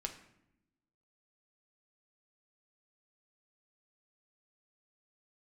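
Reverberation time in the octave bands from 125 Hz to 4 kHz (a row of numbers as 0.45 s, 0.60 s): 1.2 s, 1.3 s, 0.90 s, 0.75 s, 0.70 s, 0.55 s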